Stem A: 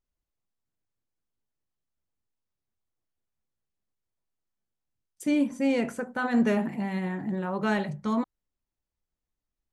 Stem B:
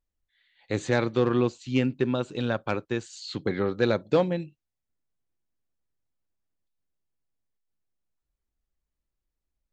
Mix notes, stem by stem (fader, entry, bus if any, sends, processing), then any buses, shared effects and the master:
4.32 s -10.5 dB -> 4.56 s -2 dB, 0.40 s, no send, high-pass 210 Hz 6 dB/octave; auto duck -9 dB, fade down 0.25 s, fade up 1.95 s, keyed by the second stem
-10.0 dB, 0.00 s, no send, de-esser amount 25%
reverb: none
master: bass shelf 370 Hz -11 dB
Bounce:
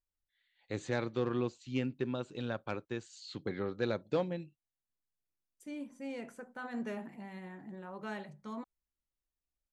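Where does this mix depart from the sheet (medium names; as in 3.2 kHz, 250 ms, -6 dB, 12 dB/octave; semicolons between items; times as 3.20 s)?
stem A -10.5 dB -> -22.0 dB; master: missing bass shelf 370 Hz -11 dB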